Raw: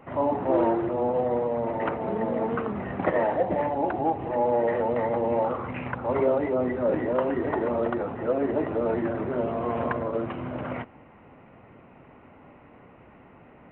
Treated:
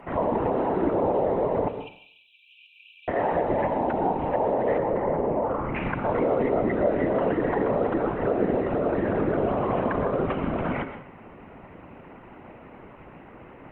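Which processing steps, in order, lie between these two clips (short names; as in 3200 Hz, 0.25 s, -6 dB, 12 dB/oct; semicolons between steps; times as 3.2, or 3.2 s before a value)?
limiter -22 dBFS, peak gain reduction 10.5 dB; whisperiser; 1.68–3.08 brick-wall FIR high-pass 2300 Hz; 4.78–5.75 air absorption 500 m; plate-style reverb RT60 0.53 s, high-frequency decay 0.9×, pre-delay 0.1 s, DRR 8.5 dB; gain +5 dB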